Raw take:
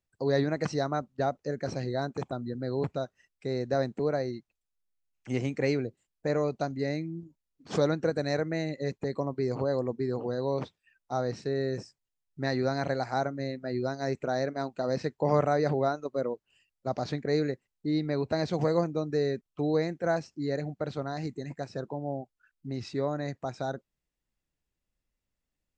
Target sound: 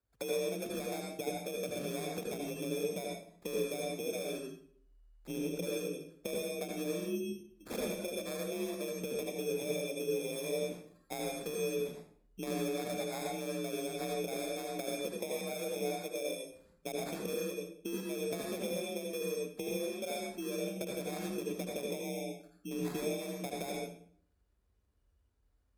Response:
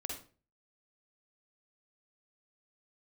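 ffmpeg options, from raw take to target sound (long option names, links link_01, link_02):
-filter_complex "[0:a]acrossover=split=310|1100[link_01][link_02][link_03];[link_01]acontrast=85[link_04];[link_04][link_02][link_03]amix=inputs=3:normalize=0,equalizer=frequency=125:width_type=o:width=1:gain=-12,equalizer=frequency=250:width_type=o:width=1:gain=-3,equalizer=frequency=500:width_type=o:width=1:gain=6,equalizer=frequency=1000:width_type=o:width=1:gain=-9,equalizer=frequency=2000:width_type=o:width=1:gain=-11,equalizer=frequency=4000:width_type=o:width=1:gain=4,acompressor=threshold=-37dB:ratio=16,afreqshift=39,acrusher=samples=15:mix=1:aa=0.000001,highshelf=frequency=6300:gain=8[link_05];[1:a]atrim=start_sample=2205,asetrate=26901,aresample=44100[link_06];[link_05][link_06]afir=irnorm=-1:irlink=0"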